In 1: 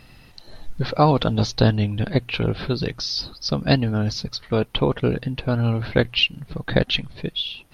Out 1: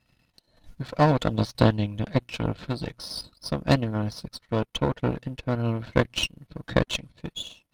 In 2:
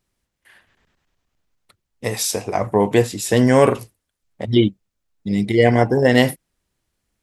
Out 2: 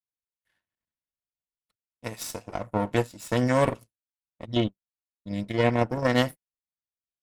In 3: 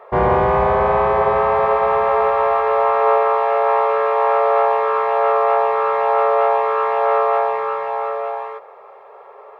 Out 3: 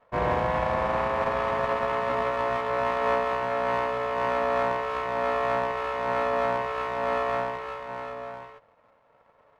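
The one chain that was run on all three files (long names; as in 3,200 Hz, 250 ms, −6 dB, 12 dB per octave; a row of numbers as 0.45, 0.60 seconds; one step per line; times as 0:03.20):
gain on one half-wave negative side −7 dB
power curve on the samples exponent 1.4
notch comb filter 400 Hz
loudness normalisation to −27 LKFS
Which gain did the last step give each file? +2.5, −3.5, −3.0 decibels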